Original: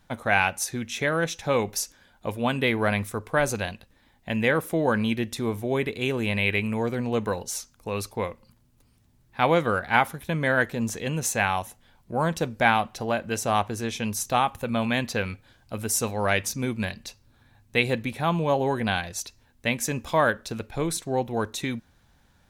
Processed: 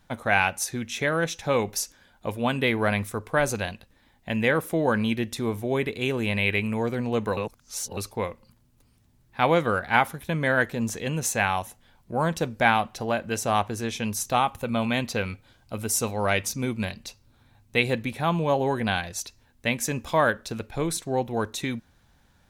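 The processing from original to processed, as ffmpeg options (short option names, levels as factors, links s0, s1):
-filter_complex "[0:a]asettb=1/sr,asplit=3[s0][s1][s2];[s0]atrim=end=14.354[s3];[s1]atrim=start=14.35:end=17.79,asetpts=PTS-STARTPTS,afade=t=in:d=0.004:c=qsin,afade=t=out:st=3.436:d=0.004:c=qsin,bandreject=f=1700:w=12[s4];[s2]atrim=start=17.786[s5];[s3][s4]acrossfade=d=0.004:c1=hsin:c2=qsin[s6];[s6][s5]acrossfade=d=0.004:c1=qsin:c2=hsin,asplit=3[s7][s8][s9];[s7]atrim=end=7.372[s10];[s8]atrim=start=7.368:end=7.972,asetpts=PTS-STARTPTS,areverse[s11];[s9]atrim=start=7.968[s12];[s10][s11]acrossfade=d=0.004:c1=hsin:c2=hsin[s13];[s13][s12]acrossfade=d=0.004:c1=hsin:c2=hsin"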